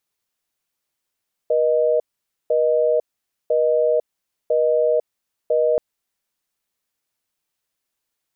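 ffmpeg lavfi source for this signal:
-f lavfi -i "aevalsrc='0.133*(sin(2*PI*480*t)+sin(2*PI*620*t))*clip(min(mod(t,1),0.5-mod(t,1))/0.005,0,1)':d=4.28:s=44100"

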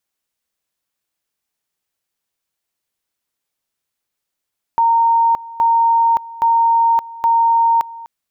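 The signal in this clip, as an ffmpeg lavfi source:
-f lavfi -i "aevalsrc='pow(10,(-10-19.5*gte(mod(t,0.82),0.57))/20)*sin(2*PI*922*t)':d=3.28:s=44100"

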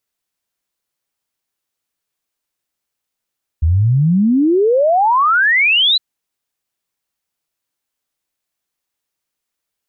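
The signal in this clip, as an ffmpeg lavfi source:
-f lavfi -i "aevalsrc='0.335*clip(min(t,2.36-t)/0.01,0,1)*sin(2*PI*75*2.36/log(4100/75)*(exp(log(4100/75)*t/2.36)-1))':d=2.36:s=44100"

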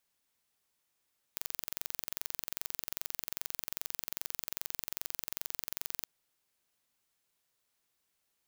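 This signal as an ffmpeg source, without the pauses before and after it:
-f lavfi -i "aevalsrc='0.376*eq(mod(n,1960),0)':d=4.67:s=44100"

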